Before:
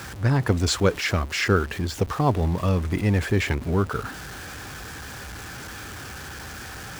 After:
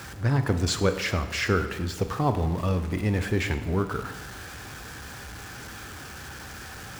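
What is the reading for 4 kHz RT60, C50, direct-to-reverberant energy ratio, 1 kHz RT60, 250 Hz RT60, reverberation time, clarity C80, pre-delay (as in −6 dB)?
0.95 s, 10.5 dB, 9.0 dB, 1.2 s, 1.4 s, 1.2 s, 12.5 dB, 22 ms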